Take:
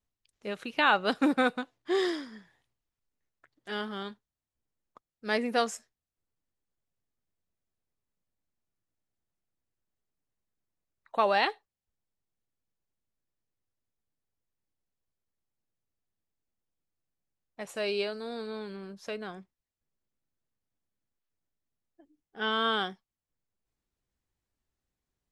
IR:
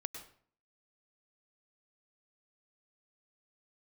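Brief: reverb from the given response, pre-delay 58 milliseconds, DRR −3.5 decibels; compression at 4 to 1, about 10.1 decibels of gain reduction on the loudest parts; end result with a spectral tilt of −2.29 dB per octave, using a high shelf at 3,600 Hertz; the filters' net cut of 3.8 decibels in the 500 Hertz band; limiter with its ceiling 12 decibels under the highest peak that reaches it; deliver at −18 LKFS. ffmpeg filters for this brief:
-filter_complex "[0:a]equalizer=frequency=500:width_type=o:gain=-5,highshelf=frequency=3600:gain=-3.5,acompressor=threshold=-33dB:ratio=4,alimiter=level_in=4.5dB:limit=-24dB:level=0:latency=1,volume=-4.5dB,asplit=2[link_01][link_02];[1:a]atrim=start_sample=2205,adelay=58[link_03];[link_02][link_03]afir=irnorm=-1:irlink=0,volume=5dB[link_04];[link_01][link_04]amix=inputs=2:normalize=0,volume=18.5dB"

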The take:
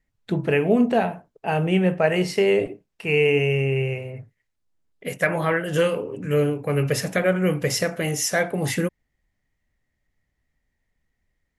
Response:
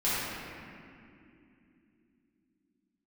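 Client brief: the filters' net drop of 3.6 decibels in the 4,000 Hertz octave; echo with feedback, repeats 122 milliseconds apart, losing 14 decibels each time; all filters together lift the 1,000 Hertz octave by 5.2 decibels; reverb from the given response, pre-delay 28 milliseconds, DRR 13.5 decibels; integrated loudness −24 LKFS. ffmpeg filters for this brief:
-filter_complex "[0:a]equalizer=frequency=1000:width_type=o:gain=8,equalizer=frequency=4000:width_type=o:gain=-7,aecho=1:1:122|244:0.2|0.0399,asplit=2[link_01][link_02];[1:a]atrim=start_sample=2205,adelay=28[link_03];[link_02][link_03]afir=irnorm=-1:irlink=0,volume=-25dB[link_04];[link_01][link_04]amix=inputs=2:normalize=0,volume=-3dB"

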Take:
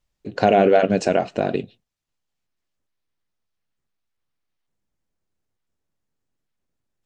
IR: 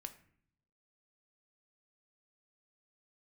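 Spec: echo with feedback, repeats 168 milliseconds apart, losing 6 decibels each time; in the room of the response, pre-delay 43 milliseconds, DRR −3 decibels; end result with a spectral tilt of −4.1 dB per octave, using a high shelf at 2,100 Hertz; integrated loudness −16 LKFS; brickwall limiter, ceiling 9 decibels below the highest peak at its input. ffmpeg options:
-filter_complex "[0:a]highshelf=frequency=2100:gain=-8.5,alimiter=limit=-12.5dB:level=0:latency=1,aecho=1:1:168|336|504|672|840|1008:0.501|0.251|0.125|0.0626|0.0313|0.0157,asplit=2[link_01][link_02];[1:a]atrim=start_sample=2205,adelay=43[link_03];[link_02][link_03]afir=irnorm=-1:irlink=0,volume=7.5dB[link_04];[link_01][link_04]amix=inputs=2:normalize=0,volume=4dB"

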